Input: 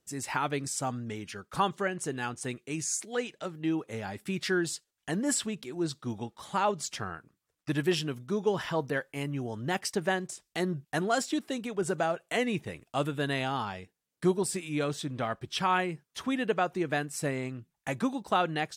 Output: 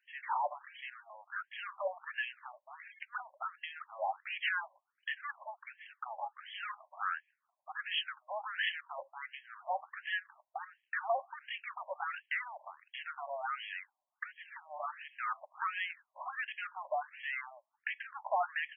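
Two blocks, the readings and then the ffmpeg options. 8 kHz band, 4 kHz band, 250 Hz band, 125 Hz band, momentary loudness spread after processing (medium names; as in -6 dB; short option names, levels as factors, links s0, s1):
under -40 dB, -5.5 dB, under -40 dB, under -40 dB, 12 LU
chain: -af "alimiter=level_in=1.06:limit=0.0631:level=0:latency=1:release=41,volume=0.944,afftfilt=real='re*between(b*sr/4096,110,4900)':imag='im*between(b*sr/4096,110,4900)':win_size=4096:overlap=0.75,asoftclip=type=tanh:threshold=0.02,afftfilt=real='re*between(b*sr/1024,760*pow(2400/760,0.5+0.5*sin(2*PI*1.4*pts/sr))/1.41,760*pow(2400/760,0.5+0.5*sin(2*PI*1.4*pts/sr))*1.41)':imag='im*between(b*sr/1024,760*pow(2400/760,0.5+0.5*sin(2*PI*1.4*pts/sr))/1.41,760*pow(2400/760,0.5+0.5*sin(2*PI*1.4*pts/sr))*1.41)':win_size=1024:overlap=0.75,volume=3.16"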